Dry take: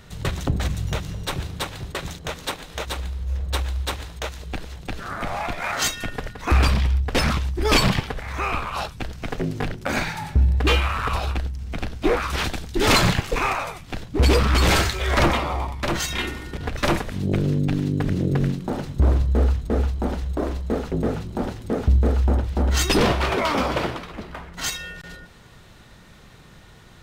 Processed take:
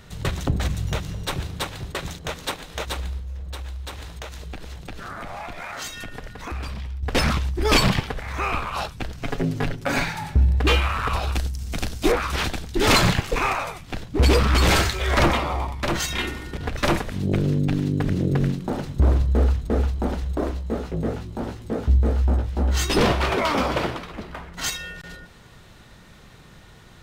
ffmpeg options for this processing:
-filter_complex "[0:a]asettb=1/sr,asplit=3[s0][s1][s2];[s0]atrim=end=3.184[s3];[s1]atrim=start=3.18:end=7.03,asetpts=PTS-STARTPTS,afade=t=in:d=0.004:c=qsin,afade=t=out:st=3.846:d=0.004:c=qsin,acompressor=threshold=0.0282:ratio=4:attack=3.2:release=140:knee=1:detection=peak[s4];[s2]atrim=start=7.026[s5];[s3][s4]acrossfade=d=0.004:c1=hsin:c2=qsin[s6];[s6][s5]acrossfade=d=0.004:c1=qsin:c2=hsin,asettb=1/sr,asplit=3[s7][s8][s9];[s7]atrim=end=9.174[s10];[s8]atrim=start=9.17:end=10.06,asetpts=PTS-STARTPTS,afade=t=in:d=0.004:c=qsin,afade=t=out:st=0.886:d=0.004:c=qsin,aecho=1:1:7.2:0.53,atrim=end_sample=39249[s11];[s9]atrim=start=10.056[s12];[s10][s11]acrossfade=d=0.004:c1=hsin:c2=qsin[s13];[s13][s12]acrossfade=d=0.004:c1=qsin:c2=hsin,asettb=1/sr,asplit=3[s14][s15][s16];[s14]atrim=end=11.324[s17];[s15]atrim=start=11.32:end=12.12,asetpts=PTS-STARTPTS,afade=t=in:d=0.004:c=qsin,afade=t=out:st=0.796:d=0.004:c=qsin,bass=f=250:g=1,treble=f=4000:g=14[s18];[s16]atrim=start=12.116[s19];[s17][s18]acrossfade=d=0.004:c1=hsin:c2=qsin[s20];[s20][s19]acrossfade=d=0.004:c1=qsin:c2=hsin,asettb=1/sr,asplit=3[s21][s22][s23];[s21]atrim=end=20.514[s24];[s22]atrim=start=20.51:end=22.97,asetpts=PTS-STARTPTS,afade=t=in:d=0.004:c=qsin,afade=t=out:st=2.456:d=0.004:c=qsin,flanger=delay=16:depth=2.1:speed=2.8[s25];[s23]atrim=start=22.966[s26];[s24][s25]acrossfade=d=0.004:c1=hsin:c2=qsin[s27];[s27][s26]acrossfade=d=0.004:c1=qsin:c2=hsin"

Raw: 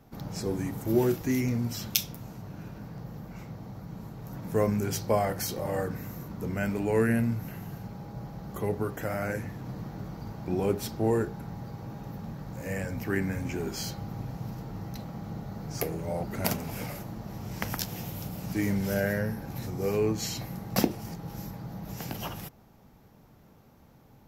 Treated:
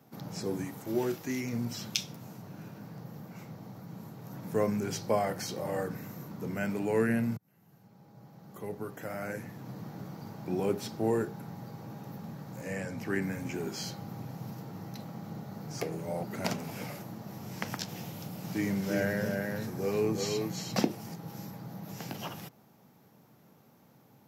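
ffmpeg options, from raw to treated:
-filter_complex "[0:a]asettb=1/sr,asplit=3[s0][s1][s2];[s0]atrim=end=0.644[s3];[s1]atrim=start=0.64:end=1.53,asetpts=PTS-STARTPTS,afade=t=in:d=0.004:c=qsin,afade=t=out:st=0.886:d=0.004:c=qsin,lowshelf=f=390:g=-6.5[s4];[s2]atrim=start=1.526[s5];[s3][s4]acrossfade=d=0.004:c1=hsin:c2=qsin[s6];[s6][s5]acrossfade=d=0.004:c1=qsin:c2=hsin,asettb=1/sr,asplit=3[s7][s8][s9];[s7]atrim=end=12.614[s10];[s8]atrim=start=12.61:end=13.22,asetpts=PTS-STARTPTS,afade=t=in:d=0.004:c=qsin,afade=t=out:st=0.606:d=0.004:c=qsin,lowpass=10000[s11];[s9]atrim=start=13.216[s12];[s10][s11]acrossfade=d=0.004:c1=hsin:c2=qsin[s13];[s13][s12]acrossfade=d=0.004:c1=qsin:c2=hsin,asettb=1/sr,asplit=3[s14][s15][s16];[s14]atrim=end=18.104[s17];[s15]atrim=start=18.1:end=20.81,asetpts=PTS-STARTPTS,afade=t=in:d=0.004:c=qsin,afade=t=out:st=2.706:d=0.004:c=qsin,aecho=1:1:347:0.631,atrim=end_sample=119511[s18];[s16]atrim=start=20.806[s19];[s17][s18]acrossfade=d=0.004:c1=hsin:c2=qsin[s20];[s20][s19]acrossfade=d=0.004:c1=qsin:c2=hsin,asplit=2[s21][s22];[s21]atrim=end=7.37,asetpts=PTS-STARTPTS,afade=t=out:st=7.366:d=0.004:c=hsin[s23];[s22]atrim=start=7.37,asetpts=PTS-STARTPTS,afade=t=in:d=2.63[s24];[s23][s24]concat=n=2:v=0:a=1,highpass=f=120:w=0.5412,highpass=f=120:w=1.3066,acrossover=split=7000[s25][s26];[s26]acompressor=threshold=0.00224:ratio=4:attack=1:release=60[s27];[s25][s27]amix=inputs=2:normalize=0,highshelf=f=7000:g=5,volume=0.75"

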